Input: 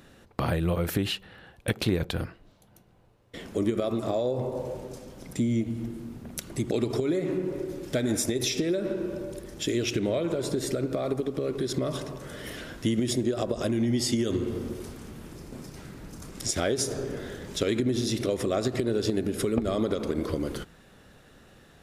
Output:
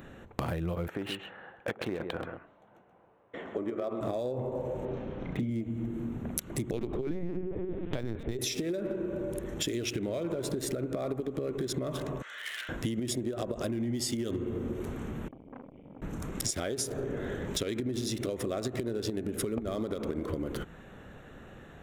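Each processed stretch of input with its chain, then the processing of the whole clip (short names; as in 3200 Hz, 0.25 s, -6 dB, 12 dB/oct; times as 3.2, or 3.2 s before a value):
0.88–4.01 band-pass 910 Hz, Q 0.71 + echo 0.129 s -9.5 dB
4.85–5.5 LPF 4000 Hz 24 dB/oct + doubler 33 ms -4 dB
6.71–8.39 bell 170 Hz +14.5 dB 0.21 oct + LPC vocoder at 8 kHz pitch kept
12.22–12.69 Butterworth band-pass 3000 Hz, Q 0.67 + tilt +1.5 dB/oct
15.28–16.02 vocal tract filter i + core saturation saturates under 950 Hz
whole clip: Wiener smoothing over 9 samples; high shelf 9100 Hz +9.5 dB; compressor 6:1, threshold -36 dBFS; gain +5.5 dB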